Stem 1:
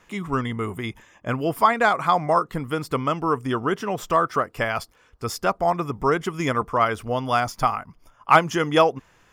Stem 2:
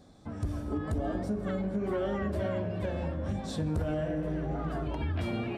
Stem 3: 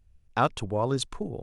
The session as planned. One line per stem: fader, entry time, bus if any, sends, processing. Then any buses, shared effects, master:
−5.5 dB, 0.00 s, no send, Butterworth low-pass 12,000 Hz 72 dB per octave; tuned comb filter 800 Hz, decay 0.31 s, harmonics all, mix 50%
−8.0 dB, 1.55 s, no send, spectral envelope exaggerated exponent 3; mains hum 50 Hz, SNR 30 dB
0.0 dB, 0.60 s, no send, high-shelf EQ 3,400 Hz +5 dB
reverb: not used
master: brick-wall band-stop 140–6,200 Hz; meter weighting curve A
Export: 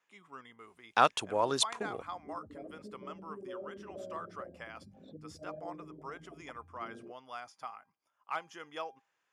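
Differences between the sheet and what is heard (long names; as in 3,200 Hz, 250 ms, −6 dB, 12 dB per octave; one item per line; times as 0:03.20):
stem 1 −5.5 dB → −16.5 dB
master: missing brick-wall band-stop 140–6,200 Hz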